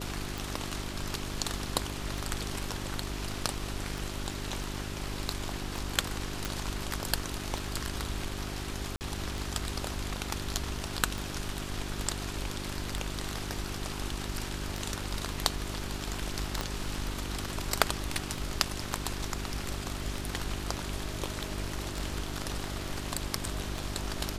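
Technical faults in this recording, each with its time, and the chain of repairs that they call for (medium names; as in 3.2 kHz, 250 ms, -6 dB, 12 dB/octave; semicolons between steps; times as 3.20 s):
hum 50 Hz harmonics 8 -39 dBFS
tick 33 1/3 rpm
6.45 s: pop
8.96–9.01 s: dropout 49 ms
16.61 s: pop -15 dBFS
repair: de-click; de-hum 50 Hz, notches 8; interpolate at 8.96 s, 49 ms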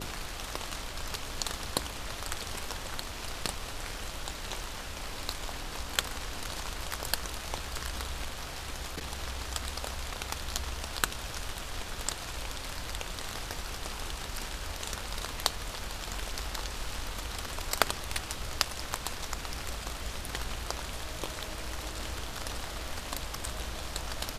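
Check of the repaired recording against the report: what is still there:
16.61 s: pop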